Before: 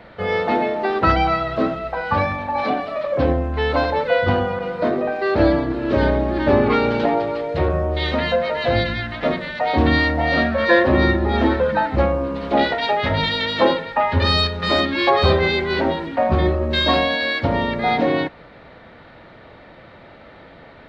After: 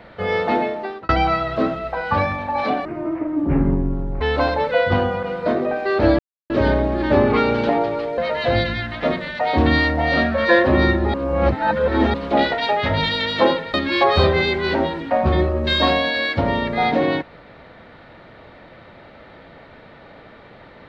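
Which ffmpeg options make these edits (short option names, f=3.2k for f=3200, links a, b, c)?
-filter_complex "[0:a]asplit=10[a][b][c][d][e][f][g][h][i][j];[a]atrim=end=1.09,asetpts=PTS-STARTPTS,afade=t=out:st=0.58:d=0.51[k];[b]atrim=start=1.09:end=2.854,asetpts=PTS-STARTPTS,afade=t=in:d=0.004:c=hsin[l];[c]atrim=start=2.85:end=3.57,asetpts=PTS-STARTPTS,asetrate=23373,aresample=44100,atrim=end_sample=59909,asetpts=PTS-STARTPTS[m];[d]atrim=start=3.566:end=5.55,asetpts=PTS-STARTPTS,afade=t=out:st=1.98:d=0.004:c=hsin[n];[e]atrim=start=5.55:end=5.86,asetpts=PTS-STARTPTS,volume=0[o];[f]atrim=start=5.86:end=7.542,asetpts=PTS-STARTPTS,afade=t=in:d=0.004:c=hsin[p];[g]atrim=start=8.378:end=11.342[q];[h]atrim=start=11.338:end=12.342,asetpts=PTS-STARTPTS,areverse[r];[i]atrim=start=12.338:end=13.942[s];[j]atrim=start=14.798[t];[k][l]concat=n=2:v=0:a=1[u];[u][m]acrossfade=d=0.004:c1=hsin:c2=hsin[v];[n][o][p]concat=n=3:v=0:a=1[w];[v][w]acrossfade=d=0.004:c1=hsin:c2=hsin[x];[x][q]acrossfade=d=0.004:c1=hsin:c2=hsin[y];[y][r]acrossfade=d=0.004:c1=hsin:c2=hsin[z];[z][s]acrossfade=d=0.004:c1=hsin:c2=hsin[aa];[aa][t]acrossfade=d=0.004:c1=hsin:c2=hsin"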